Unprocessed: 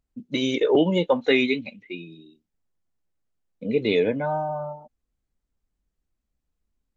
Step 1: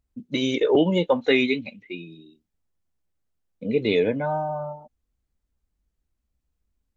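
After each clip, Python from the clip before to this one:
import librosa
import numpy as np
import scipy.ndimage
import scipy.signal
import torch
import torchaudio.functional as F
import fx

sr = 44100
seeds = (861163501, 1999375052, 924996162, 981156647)

y = fx.peak_eq(x, sr, hz=65.0, db=6.5, octaves=1.1)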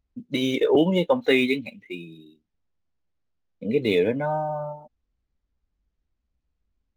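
y = scipy.ndimage.median_filter(x, 5, mode='constant')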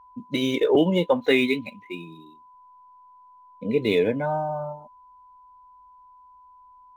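y = x + 10.0 ** (-49.0 / 20.0) * np.sin(2.0 * np.pi * 1000.0 * np.arange(len(x)) / sr)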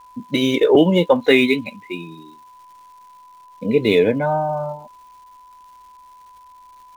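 y = fx.dmg_crackle(x, sr, seeds[0], per_s=480.0, level_db=-51.0)
y = y * 10.0 ** (6.0 / 20.0)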